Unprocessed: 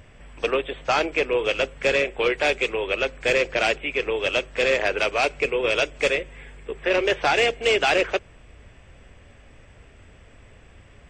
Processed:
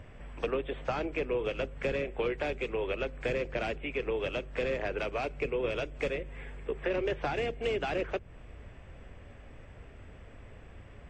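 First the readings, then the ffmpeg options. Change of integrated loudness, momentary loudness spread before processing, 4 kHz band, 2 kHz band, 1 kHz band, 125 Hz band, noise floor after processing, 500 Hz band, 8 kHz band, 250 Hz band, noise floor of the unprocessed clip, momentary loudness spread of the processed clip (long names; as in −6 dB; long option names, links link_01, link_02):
−11.0 dB, 6 LU, −16.5 dB, −14.5 dB, −12.0 dB, −0.5 dB, −51 dBFS, −9.0 dB, below −20 dB, −5.5 dB, −50 dBFS, 20 LU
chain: -filter_complex "[0:a]acrossover=split=260[link_01][link_02];[link_02]acompressor=threshold=-30dB:ratio=6[link_03];[link_01][link_03]amix=inputs=2:normalize=0,highshelf=frequency=2900:gain=-11.5"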